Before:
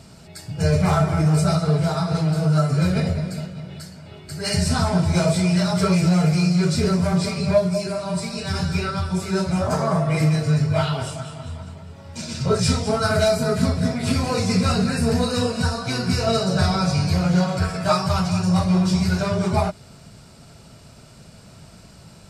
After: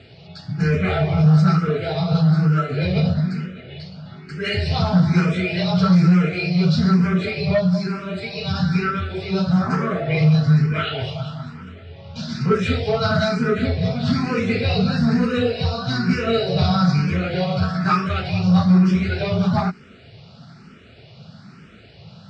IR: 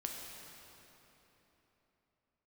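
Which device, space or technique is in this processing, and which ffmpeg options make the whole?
barber-pole phaser into a guitar amplifier: -filter_complex "[0:a]asplit=2[s0][s1];[s1]afreqshift=1.1[s2];[s0][s2]amix=inputs=2:normalize=1,asoftclip=type=tanh:threshold=0.251,highpass=110,equalizer=f=300:t=q:w=4:g=-6,equalizer=f=610:t=q:w=4:g=-6,equalizer=f=960:t=q:w=4:g=-10,lowpass=f=4100:w=0.5412,lowpass=f=4100:w=1.3066,volume=2.37"

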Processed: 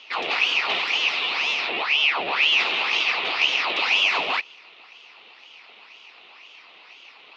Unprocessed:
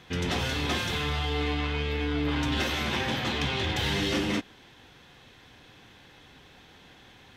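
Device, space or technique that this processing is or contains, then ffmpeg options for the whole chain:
voice changer toy: -filter_complex "[0:a]asettb=1/sr,asplit=3[s0][s1][s2];[s0]atrim=end=1.084[s3];[s1]atrim=start=1.08:end=1.69,asetpts=PTS-STARTPTS,afade=t=in:d=0.004:c=qsin,afade=t=out:st=0.606:d=0.004:c=qsin,aemphasis=mode=production:type=bsi[s4];[s2]atrim=start=1.686[s5];[s3][s4]acrossfade=d=0.004:c1=hsin:c2=qsin[s6];[s6][s5]acrossfade=d=0.004:c1=qsin:c2=hsin,aeval=exprs='val(0)*sin(2*PI*1700*n/s+1700*0.85/2*sin(2*PI*2*n/s))':c=same,highpass=520,equalizer=f=570:t=q:w=4:g=-6,equalizer=f=1600:t=q:w=4:g=-9,equalizer=f=2600:t=q:w=4:g=9,lowpass=f=4300:w=0.5412,lowpass=f=4300:w=1.3066,volume=2.51"

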